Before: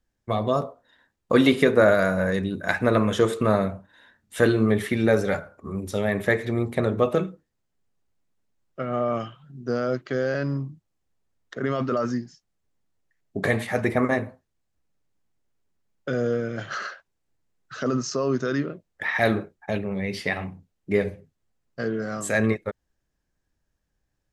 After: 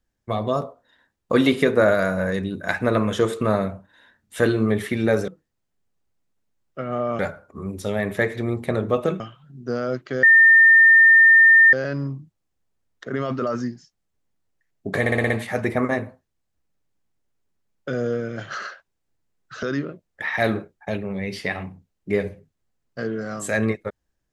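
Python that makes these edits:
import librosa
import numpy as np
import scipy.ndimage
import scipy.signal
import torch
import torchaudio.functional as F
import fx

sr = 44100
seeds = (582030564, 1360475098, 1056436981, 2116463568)

y = fx.edit(x, sr, fx.move(start_s=7.29, length_s=1.91, to_s=5.28),
    fx.insert_tone(at_s=10.23, length_s=1.5, hz=1810.0, db=-8.5),
    fx.stutter(start_s=13.5, slice_s=0.06, count=6),
    fx.cut(start_s=17.83, length_s=0.61), tone=tone)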